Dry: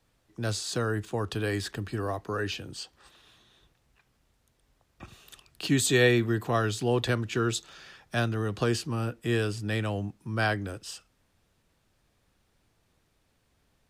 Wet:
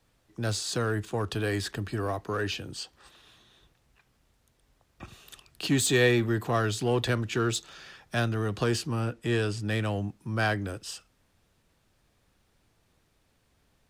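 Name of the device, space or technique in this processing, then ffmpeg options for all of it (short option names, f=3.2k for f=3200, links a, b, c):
parallel distortion: -filter_complex "[0:a]asplit=2[a][b];[b]asoftclip=type=hard:threshold=-28.5dB,volume=-6dB[c];[a][c]amix=inputs=2:normalize=0,asettb=1/sr,asplit=3[d][e][f];[d]atrim=end=9.004[g];[e]atrim=start=9:end=9.65,asetpts=PTS-STARTPTS,afade=t=in:d=0.004:c=qsin,afade=t=out:st=0.646:d=0.004:c=qsin,lowpass=10k[h];[f]atrim=start=9.646[i];[g][h]acrossfade=d=0.004:c1=hsin:c2=qsin[j];[j][i]acrossfade=d=0.004:c1=qsin:c2=hsin,volume=-2dB"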